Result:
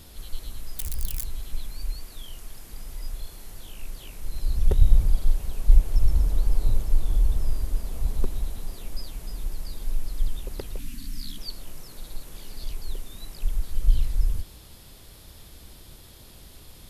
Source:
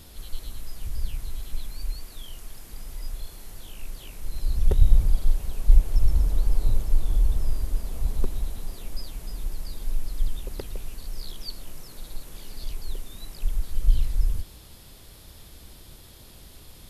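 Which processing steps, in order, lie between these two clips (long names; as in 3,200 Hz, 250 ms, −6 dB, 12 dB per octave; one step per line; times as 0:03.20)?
0:00.79–0:01.25: spike at every zero crossing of −20.5 dBFS
0:10.79–0:11.38: drawn EQ curve 120 Hz 0 dB, 280 Hz +13 dB, 400 Hz −22 dB, 1,800 Hz +2 dB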